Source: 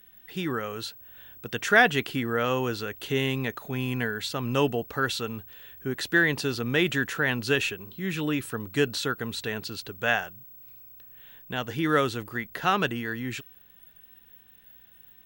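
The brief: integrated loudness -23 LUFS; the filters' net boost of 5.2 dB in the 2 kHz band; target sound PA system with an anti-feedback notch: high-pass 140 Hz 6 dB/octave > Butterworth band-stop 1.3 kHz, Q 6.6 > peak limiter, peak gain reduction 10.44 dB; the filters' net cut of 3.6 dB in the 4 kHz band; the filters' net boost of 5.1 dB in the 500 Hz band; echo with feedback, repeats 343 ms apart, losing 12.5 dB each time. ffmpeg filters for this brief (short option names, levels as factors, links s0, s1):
-af "highpass=f=140:p=1,asuperstop=centerf=1300:order=8:qfactor=6.6,equalizer=f=500:t=o:g=6.5,equalizer=f=2000:t=o:g=8,equalizer=f=4000:t=o:g=-8.5,aecho=1:1:343|686|1029:0.237|0.0569|0.0137,volume=1.41,alimiter=limit=0.355:level=0:latency=1"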